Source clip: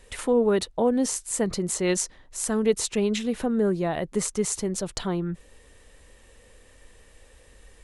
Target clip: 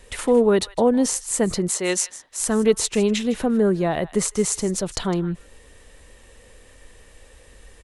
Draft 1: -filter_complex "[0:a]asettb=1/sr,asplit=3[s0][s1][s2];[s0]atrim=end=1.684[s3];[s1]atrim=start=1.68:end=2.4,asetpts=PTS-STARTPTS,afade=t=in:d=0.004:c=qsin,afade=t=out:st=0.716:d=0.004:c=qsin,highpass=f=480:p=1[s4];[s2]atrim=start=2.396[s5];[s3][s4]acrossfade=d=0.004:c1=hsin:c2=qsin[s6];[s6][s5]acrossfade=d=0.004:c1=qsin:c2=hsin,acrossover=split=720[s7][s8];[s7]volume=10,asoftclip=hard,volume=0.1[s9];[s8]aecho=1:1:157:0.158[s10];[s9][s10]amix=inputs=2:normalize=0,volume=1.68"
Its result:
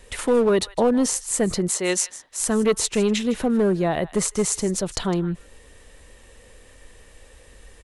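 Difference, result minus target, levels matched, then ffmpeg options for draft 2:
overload inside the chain: distortion +26 dB
-filter_complex "[0:a]asettb=1/sr,asplit=3[s0][s1][s2];[s0]atrim=end=1.684[s3];[s1]atrim=start=1.68:end=2.4,asetpts=PTS-STARTPTS,afade=t=in:d=0.004:c=qsin,afade=t=out:st=0.716:d=0.004:c=qsin,highpass=f=480:p=1[s4];[s2]atrim=start=2.396[s5];[s3][s4]acrossfade=d=0.004:c1=hsin:c2=qsin[s6];[s6][s5]acrossfade=d=0.004:c1=qsin:c2=hsin,acrossover=split=720[s7][s8];[s7]volume=4.73,asoftclip=hard,volume=0.211[s9];[s8]aecho=1:1:157:0.158[s10];[s9][s10]amix=inputs=2:normalize=0,volume=1.68"

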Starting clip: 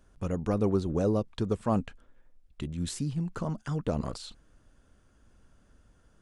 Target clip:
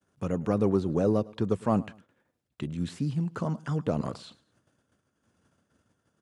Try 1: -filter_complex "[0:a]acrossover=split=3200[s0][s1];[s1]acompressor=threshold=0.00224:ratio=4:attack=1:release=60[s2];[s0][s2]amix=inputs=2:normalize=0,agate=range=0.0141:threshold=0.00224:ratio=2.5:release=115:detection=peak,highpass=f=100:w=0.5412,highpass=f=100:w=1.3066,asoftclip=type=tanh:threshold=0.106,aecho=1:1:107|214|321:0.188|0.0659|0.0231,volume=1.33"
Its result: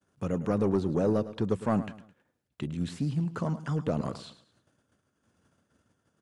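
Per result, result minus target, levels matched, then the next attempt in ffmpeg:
saturation: distortion +13 dB; echo-to-direct +7.5 dB
-filter_complex "[0:a]acrossover=split=3200[s0][s1];[s1]acompressor=threshold=0.00224:ratio=4:attack=1:release=60[s2];[s0][s2]amix=inputs=2:normalize=0,agate=range=0.0141:threshold=0.00224:ratio=2.5:release=115:detection=peak,highpass=f=100:w=0.5412,highpass=f=100:w=1.3066,asoftclip=type=tanh:threshold=0.282,aecho=1:1:107|214|321:0.188|0.0659|0.0231,volume=1.33"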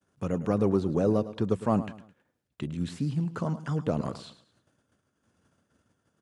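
echo-to-direct +7.5 dB
-filter_complex "[0:a]acrossover=split=3200[s0][s1];[s1]acompressor=threshold=0.00224:ratio=4:attack=1:release=60[s2];[s0][s2]amix=inputs=2:normalize=0,agate=range=0.0141:threshold=0.00224:ratio=2.5:release=115:detection=peak,highpass=f=100:w=0.5412,highpass=f=100:w=1.3066,asoftclip=type=tanh:threshold=0.282,aecho=1:1:107|214:0.0794|0.0278,volume=1.33"

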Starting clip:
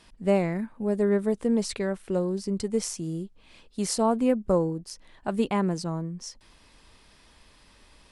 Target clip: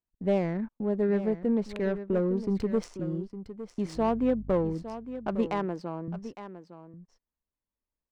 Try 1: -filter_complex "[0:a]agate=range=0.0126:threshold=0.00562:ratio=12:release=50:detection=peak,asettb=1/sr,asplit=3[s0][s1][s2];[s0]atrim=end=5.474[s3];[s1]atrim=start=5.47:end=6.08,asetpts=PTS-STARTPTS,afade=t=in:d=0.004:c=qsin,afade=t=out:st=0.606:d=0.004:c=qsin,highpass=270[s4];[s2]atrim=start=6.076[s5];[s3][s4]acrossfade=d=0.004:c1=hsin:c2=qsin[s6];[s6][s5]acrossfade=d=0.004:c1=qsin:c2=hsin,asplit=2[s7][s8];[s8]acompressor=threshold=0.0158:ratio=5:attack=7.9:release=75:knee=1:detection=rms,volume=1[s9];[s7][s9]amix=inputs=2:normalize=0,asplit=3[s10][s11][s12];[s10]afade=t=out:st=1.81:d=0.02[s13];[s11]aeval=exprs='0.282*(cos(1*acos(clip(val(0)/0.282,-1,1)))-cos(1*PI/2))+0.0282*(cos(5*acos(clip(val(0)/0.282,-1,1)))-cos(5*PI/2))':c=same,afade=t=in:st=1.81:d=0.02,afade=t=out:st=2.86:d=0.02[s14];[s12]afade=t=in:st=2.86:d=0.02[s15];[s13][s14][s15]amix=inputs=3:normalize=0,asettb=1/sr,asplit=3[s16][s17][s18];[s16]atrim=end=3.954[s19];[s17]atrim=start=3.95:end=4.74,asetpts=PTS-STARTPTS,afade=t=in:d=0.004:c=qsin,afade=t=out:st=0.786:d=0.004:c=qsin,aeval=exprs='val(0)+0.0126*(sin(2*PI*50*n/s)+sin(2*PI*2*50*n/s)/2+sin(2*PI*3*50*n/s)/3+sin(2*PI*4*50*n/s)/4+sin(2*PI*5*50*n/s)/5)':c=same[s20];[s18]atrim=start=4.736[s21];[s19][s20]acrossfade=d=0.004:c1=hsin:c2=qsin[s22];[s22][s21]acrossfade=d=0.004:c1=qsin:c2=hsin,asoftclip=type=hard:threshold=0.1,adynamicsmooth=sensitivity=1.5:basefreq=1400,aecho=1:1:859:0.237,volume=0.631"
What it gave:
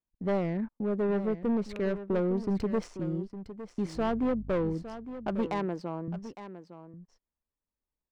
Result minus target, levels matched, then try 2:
hard clipper: distortion +17 dB
-filter_complex "[0:a]agate=range=0.0126:threshold=0.00562:ratio=12:release=50:detection=peak,asettb=1/sr,asplit=3[s0][s1][s2];[s0]atrim=end=5.474[s3];[s1]atrim=start=5.47:end=6.08,asetpts=PTS-STARTPTS,afade=t=in:d=0.004:c=qsin,afade=t=out:st=0.606:d=0.004:c=qsin,highpass=270[s4];[s2]atrim=start=6.076[s5];[s3][s4]acrossfade=d=0.004:c1=hsin:c2=qsin[s6];[s6][s5]acrossfade=d=0.004:c1=qsin:c2=hsin,asplit=2[s7][s8];[s8]acompressor=threshold=0.0158:ratio=5:attack=7.9:release=75:knee=1:detection=rms,volume=1[s9];[s7][s9]amix=inputs=2:normalize=0,asplit=3[s10][s11][s12];[s10]afade=t=out:st=1.81:d=0.02[s13];[s11]aeval=exprs='0.282*(cos(1*acos(clip(val(0)/0.282,-1,1)))-cos(1*PI/2))+0.0282*(cos(5*acos(clip(val(0)/0.282,-1,1)))-cos(5*PI/2))':c=same,afade=t=in:st=1.81:d=0.02,afade=t=out:st=2.86:d=0.02[s14];[s12]afade=t=in:st=2.86:d=0.02[s15];[s13][s14][s15]amix=inputs=3:normalize=0,asettb=1/sr,asplit=3[s16][s17][s18];[s16]atrim=end=3.954[s19];[s17]atrim=start=3.95:end=4.74,asetpts=PTS-STARTPTS,afade=t=in:d=0.004:c=qsin,afade=t=out:st=0.786:d=0.004:c=qsin,aeval=exprs='val(0)+0.0126*(sin(2*PI*50*n/s)+sin(2*PI*2*50*n/s)/2+sin(2*PI*3*50*n/s)/3+sin(2*PI*4*50*n/s)/4+sin(2*PI*5*50*n/s)/5)':c=same[s20];[s18]atrim=start=4.736[s21];[s19][s20]acrossfade=d=0.004:c1=hsin:c2=qsin[s22];[s22][s21]acrossfade=d=0.004:c1=qsin:c2=hsin,asoftclip=type=hard:threshold=0.237,adynamicsmooth=sensitivity=1.5:basefreq=1400,aecho=1:1:859:0.237,volume=0.631"

